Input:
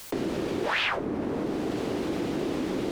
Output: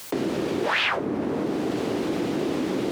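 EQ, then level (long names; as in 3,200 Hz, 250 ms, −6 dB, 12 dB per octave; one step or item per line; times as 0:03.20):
high-pass filter 98 Hz 12 dB per octave
+3.5 dB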